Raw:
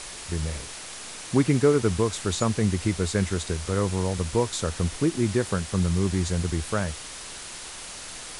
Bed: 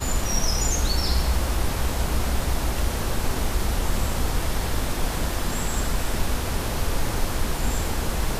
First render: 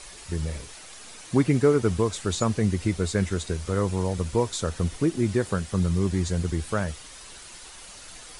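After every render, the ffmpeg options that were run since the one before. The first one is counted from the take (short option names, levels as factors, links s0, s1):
-af "afftdn=nr=8:nf=-39"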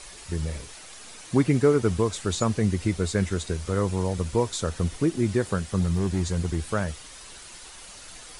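-filter_complex "[0:a]asettb=1/sr,asplit=3[s0][s1][s2];[s0]atrim=end=5.804[s3];[s1]atrim=start=5.8:end=6.72,asetpts=PTS-STARTPTS,afade=t=in:d=0.004:c=qsin,afade=t=out:st=0.916:d=0.004:c=qsin,volume=7.5,asoftclip=hard,volume=0.133[s4];[s2]atrim=start=6.716[s5];[s3][s4]acrossfade=d=0.004:c1=hsin:c2=qsin[s6];[s6][s5]acrossfade=d=0.004:c1=qsin:c2=hsin"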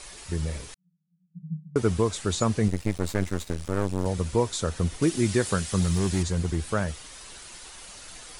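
-filter_complex "[0:a]asettb=1/sr,asplit=3[s0][s1][s2];[s0]atrim=end=0.744[s3];[s1]atrim=start=0.74:end=1.76,asetpts=PTS-STARTPTS,afade=t=in:d=0.004:c=qsin,afade=t=out:st=1.016:d=0.004:c=qsin,asuperpass=centerf=170:order=12:qfactor=4.7[s4];[s2]atrim=start=1.756[s5];[s3][s4]acrossfade=d=0.004:c1=hsin:c2=qsin[s6];[s6][s5]acrossfade=d=0.004:c1=qsin:c2=hsin,asettb=1/sr,asplit=3[s7][s8][s9];[s7]atrim=end=2.684[s10];[s8]atrim=start=2.68:end=4.06,asetpts=PTS-STARTPTS,afade=t=in:d=0.004:c=qsin,afade=t=out:st=1.376:d=0.004:c=qsin,aeval=exprs='max(val(0),0)':c=same[s11];[s9]atrim=start=4.056[s12];[s10][s11]acrossfade=d=0.004:c1=hsin:c2=qsin[s13];[s13][s12]acrossfade=d=0.004:c1=qsin:c2=hsin,asettb=1/sr,asplit=3[s14][s15][s16];[s14]atrim=end=5.024[s17];[s15]atrim=start=5.02:end=6.23,asetpts=PTS-STARTPTS,afade=t=in:d=0.004:c=qsin,afade=t=out:st=1.206:d=0.004:c=qsin,highshelf=f=2100:g=9[s18];[s16]atrim=start=6.226[s19];[s17][s18]acrossfade=d=0.004:c1=hsin:c2=qsin[s20];[s20][s19]acrossfade=d=0.004:c1=qsin:c2=hsin"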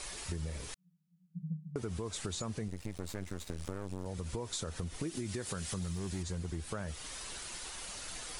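-af "alimiter=limit=0.106:level=0:latency=1:release=104,acompressor=threshold=0.0178:ratio=6"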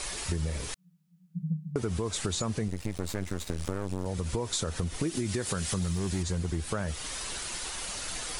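-af "volume=2.37"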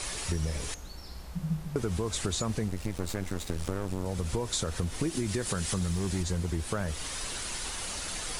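-filter_complex "[1:a]volume=0.0841[s0];[0:a][s0]amix=inputs=2:normalize=0"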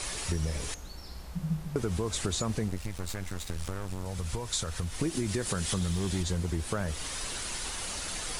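-filter_complex "[0:a]asettb=1/sr,asplit=3[s0][s1][s2];[s0]atrim=end=2.784[s3];[s1]atrim=start=2.78:end=4.99,asetpts=PTS-STARTPTS,afade=t=in:d=0.004:c=qsin,afade=t=out:st=2.206:d=0.004:c=qsin,equalizer=f=330:w=0.61:g=-7.5[s4];[s2]atrim=start=4.986[s5];[s3][s4]acrossfade=d=0.004:c1=hsin:c2=qsin[s6];[s6][s5]acrossfade=d=0.004:c1=qsin:c2=hsin,asettb=1/sr,asplit=3[s7][s8][s9];[s7]atrim=end=5.664[s10];[s8]atrim=start=5.66:end=6.34,asetpts=PTS-STARTPTS,afade=t=in:d=0.004:c=qsin,afade=t=out:st=0.676:d=0.004:c=qsin,equalizer=f=3400:w=3.6:g=6[s11];[s9]atrim=start=6.336[s12];[s10][s11]acrossfade=d=0.004:c1=hsin:c2=qsin[s13];[s13][s12]acrossfade=d=0.004:c1=qsin:c2=hsin"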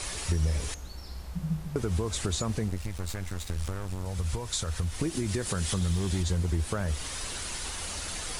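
-af "equalizer=f=74:w=2.2:g=7"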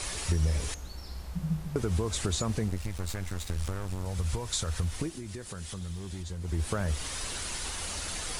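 -filter_complex "[0:a]asplit=3[s0][s1][s2];[s0]atrim=end=5.17,asetpts=PTS-STARTPTS,afade=t=out:st=4.92:d=0.25:silence=0.316228[s3];[s1]atrim=start=5.17:end=6.4,asetpts=PTS-STARTPTS,volume=0.316[s4];[s2]atrim=start=6.4,asetpts=PTS-STARTPTS,afade=t=in:d=0.25:silence=0.316228[s5];[s3][s4][s5]concat=n=3:v=0:a=1"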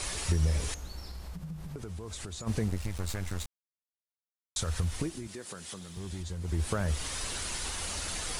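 -filter_complex "[0:a]asplit=3[s0][s1][s2];[s0]afade=t=out:st=1.08:d=0.02[s3];[s1]acompressor=threshold=0.0141:ratio=6:attack=3.2:release=140:knee=1:detection=peak,afade=t=in:st=1.08:d=0.02,afade=t=out:st=2.46:d=0.02[s4];[s2]afade=t=in:st=2.46:d=0.02[s5];[s3][s4][s5]amix=inputs=3:normalize=0,asettb=1/sr,asplit=3[s6][s7][s8];[s6]atrim=end=5.274[s9];[s7]atrim=start=5.27:end=5.97,asetpts=PTS-STARTPTS,afade=t=in:d=0.004:c=qsin,afade=t=out:st=0.696:d=0.004:c=qsin,highpass=210[s10];[s8]atrim=start=5.966[s11];[s9][s10]acrossfade=d=0.004:c1=hsin:c2=qsin[s12];[s12][s11]acrossfade=d=0.004:c1=qsin:c2=hsin,asplit=3[s13][s14][s15];[s13]atrim=end=3.46,asetpts=PTS-STARTPTS,afade=t=out:st=3.456:d=0.004:c=hsin[s16];[s14]atrim=start=3.46:end=4.56,asetpts=PTS-STARTPTS,volume=0[s17];[s15]atrim=start=4.56,asetpts=PTS-STARTPTS,afade=t=in:d=0.004:c=hsin[s18];[s16][s17][s18]concat=n=3:v=0:a=1"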